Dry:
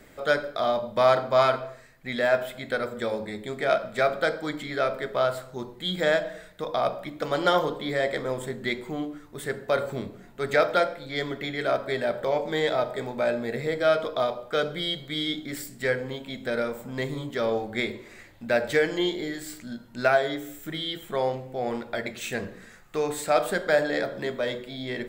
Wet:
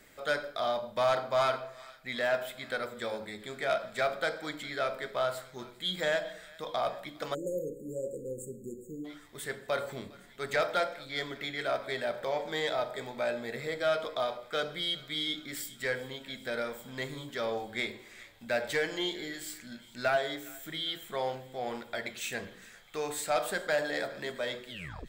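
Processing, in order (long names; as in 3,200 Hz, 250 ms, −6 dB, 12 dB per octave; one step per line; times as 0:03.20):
turntable brake at the end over 0.40 s
tilt shelving filter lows −4.5 dB, about 1,200 Hz
on a send: feedback echo with a high-pass in the loop 407 ms, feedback 80%, high-pass 980 Hz, level −22 dB
on the sum: soft clipping −15.5 dBFS, distortion −17 dB
time-frequency box erased 0:07.34–0:09.05, 560–6,500 Hz
dynamic equaliser 760 Hz, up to +3 dB, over −37 dBFS, Q 1.5
level −5.5 dB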